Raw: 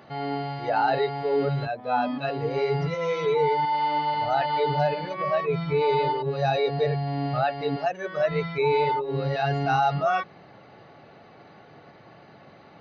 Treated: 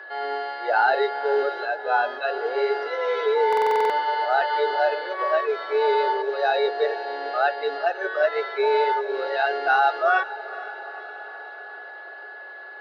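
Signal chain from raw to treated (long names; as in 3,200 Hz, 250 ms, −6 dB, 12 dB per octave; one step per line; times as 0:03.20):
sub-octave generator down 1 octave, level −5 dB
noise that follows the level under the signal 28 dB
Butterworth low-pass 4,900 Hz 36 dB per octave
parametric band 1,500 Hz +9 dB 0.32 octaves
notch filter 2,400 Hz, Q 6.2
feedback delay with all-pass diffusion 469 ms, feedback 66%, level −16 dB
steady tone 1,700 Hz −40 dBFS
Chebyshev high-pass filter 370 Hz, order 5
buffer that repeats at 0:03.48, samples 2,048, times 8
level +2.5 dB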